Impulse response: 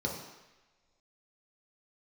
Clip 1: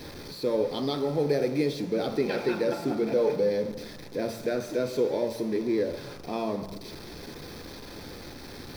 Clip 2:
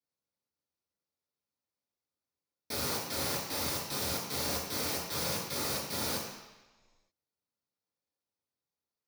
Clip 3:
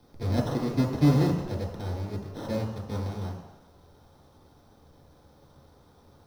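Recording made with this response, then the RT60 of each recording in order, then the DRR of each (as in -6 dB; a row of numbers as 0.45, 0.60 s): 3; not exponential, not exponential, not exponential; 5.0, -7.0, -1.5 dB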